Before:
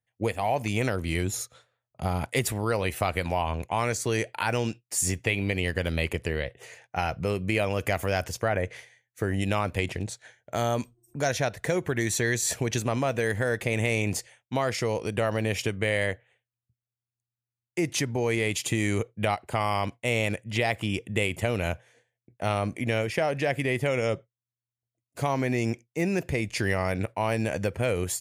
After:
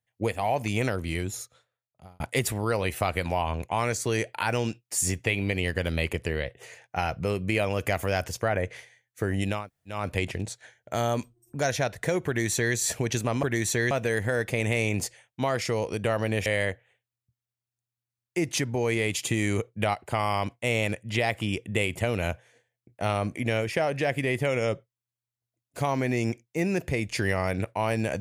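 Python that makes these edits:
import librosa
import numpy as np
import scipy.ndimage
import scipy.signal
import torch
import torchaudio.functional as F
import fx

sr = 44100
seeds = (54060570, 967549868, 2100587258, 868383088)

y = fx.edit(x, sr, fx.fade_out_span(start_s=0.84, length_s=1.36),
    fx.insert_room_tone(at_s=9.58, length_s=0.39, crossfade_s=0.24),
    fx.duplicate(start_s=11.88, length_s=0.48, to_s=13.04),
    fx.cut(start_s=15.59, length_s=0.28), tone=tone)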